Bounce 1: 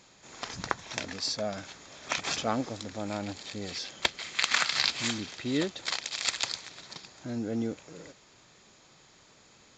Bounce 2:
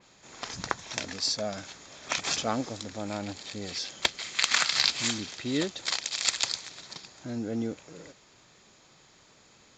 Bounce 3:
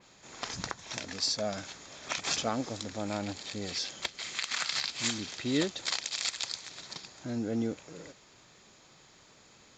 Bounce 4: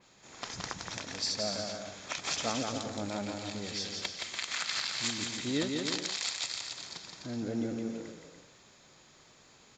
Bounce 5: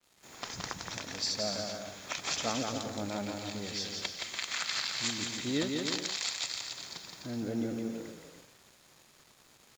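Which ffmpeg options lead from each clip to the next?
ffmpeg -i in.wav -af "adynamicequalizer=threshold=0.00794:dfrequency=3900:dqfactor=0.7:tfrequency=3900:tqfactor=0.7:attack=5:release=100:ratio=0.375:range=2.5:mode=boostabove:tftype=highshelf" out.wav
ffmpeg -i in.wav -af "alimiter=limit=-16.5dB:level=0:latency=1:release=247" out.wav
ffmpeg -i in.wav -af "aecho=1:1:170|289|372.3|430.6|471.4:0.631|0.398|0.251|0.158|0.1,volume=-3dB" out.wav
ffmpeg -i in.wav -af "acrusher=bits=8:mix=0:aa=0.5" out.wav

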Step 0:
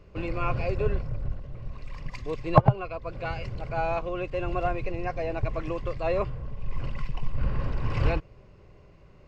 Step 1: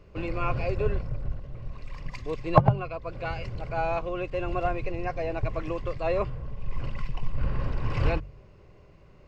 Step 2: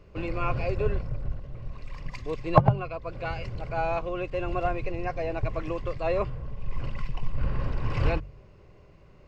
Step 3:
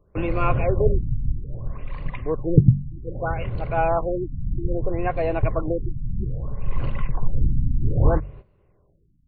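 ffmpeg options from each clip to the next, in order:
ffmpeg -i in.wav -af "bandreject=frequency=47.21:width_type=h:width=4,bandreject=frequency=94.42:width_type=h:width=4,bandreject=frequency=141.63:width_type=h:width=4,bandreject=frequency=188.84:width_type=h:width=4,bandreject=frequency=236.05:width_type=h:width=4" out.wav
ffmpeg -i in.wav -af anull out.wav
ffmpeg -i in.wav -af "aemphasis=mode=reproduction:type=75kf,agate=range=-15dB:threshold=-46dB:ratio=16:detection=peak,afftfilt=real='re*lt(b*sr/1024,270*pow(4700/270,0.5+0.5*sin(2*PI*0.62*pts/sr)))':imag='im*lt(b*sr/1024,270*pow(4700/270,0.5+0.5*sin(2*PI*0.62*pts/sr)))':win_size=1024:overlap=0.75,volume=7.5dB" out.wav

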